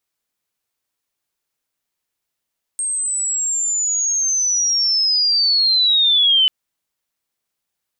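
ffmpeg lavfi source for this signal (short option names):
-f lavfi -i "aevalsrc='pow(10,(-19+8.5*t/3.69)/20)*sin(2*PI*(8500*t-5500*t*t/(2*3.69)))':d=3.69:s=44100"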